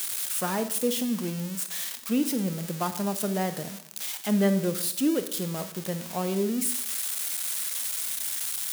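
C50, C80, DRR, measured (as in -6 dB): 11.5 dB, 14.0 dB, 9.5 dB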